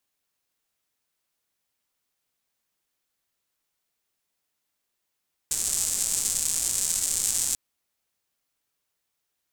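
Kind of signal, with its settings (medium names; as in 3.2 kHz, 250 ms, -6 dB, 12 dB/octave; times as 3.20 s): rain from filtered ticks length 2.04 s, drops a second 290, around 7.7 kHz, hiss -17.5 dB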